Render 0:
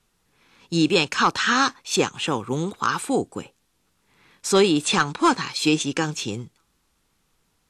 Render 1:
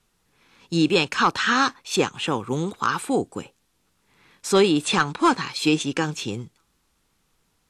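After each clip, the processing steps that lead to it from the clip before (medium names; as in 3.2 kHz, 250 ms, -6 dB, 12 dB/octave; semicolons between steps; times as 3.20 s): dynamic bell 6.4 kHz, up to -4 dB, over -41 dBFS, Q 1.1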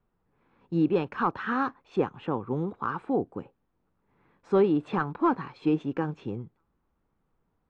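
low-pass 1.1 kHz 12 dB/octave; trim -4 dB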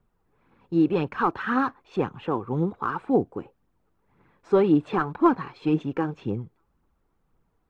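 phaser 1.9 Hz, delay 3.1 ms, feedback 39%; trim +2.5 dB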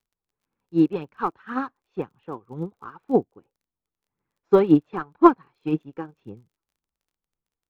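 resampled via 16 kHz; crackle 31 per s -36 dBFS; upward expansion 2.5:1, over -33 dBFS; trim +7 dB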